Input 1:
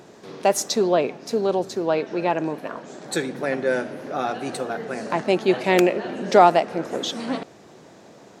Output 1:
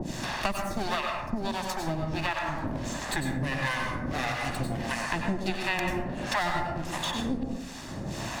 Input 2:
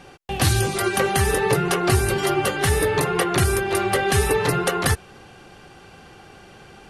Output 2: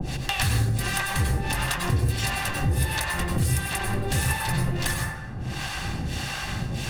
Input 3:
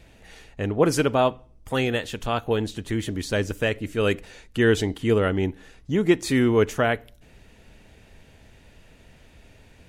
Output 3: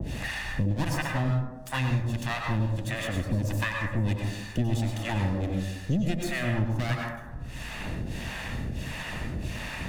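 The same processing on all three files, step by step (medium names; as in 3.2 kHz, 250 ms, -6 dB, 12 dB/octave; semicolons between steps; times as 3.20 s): comb filter that takes the minimum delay 1.1 ms; peaking EQ 860 Hz -7.5 dB 1.2 oct; harmonic tremolo 1.5 Hz, depth 100%, crossover 620 Hz; plate-style reverb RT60 0.71 s, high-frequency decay 0.4×, pre-delay 80 ms, DRR 1.5 dB; three bands compressed up and down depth 100%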